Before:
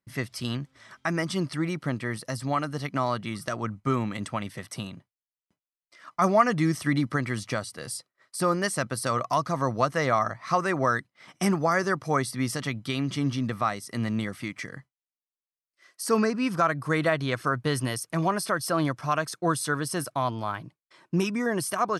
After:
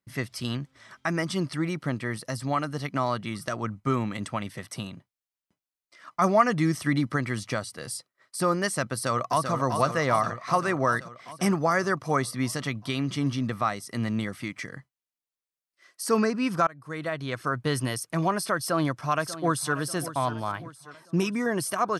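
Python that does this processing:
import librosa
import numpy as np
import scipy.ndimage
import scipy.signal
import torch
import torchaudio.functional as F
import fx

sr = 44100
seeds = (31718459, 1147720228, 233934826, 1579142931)

y = fx.echo_throw(x, sr, start_s=8.92, length_s=0.6, ms=390, feedback_pct=70, wet_db=-6.0)
y = fx.echo_throw(y, sr, start_s=18.58, length_s=1.18, ms=590, feedback_pct=50, wet_db=-14.0)
y = fx.edit(y, sr, fx.fade_in_from(start_s=16.67, length_s=1.05, floor_db=-21.5), tone=tone)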